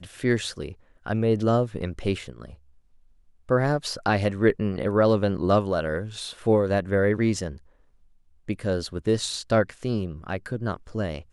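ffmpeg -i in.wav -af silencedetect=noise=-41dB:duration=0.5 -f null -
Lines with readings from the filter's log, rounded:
silence_start: 2.54
silence_end: 3.49 | silence_duration: 0.95
silence_start: 7.58
silence_end: 8.49 | silence_duration: 0.91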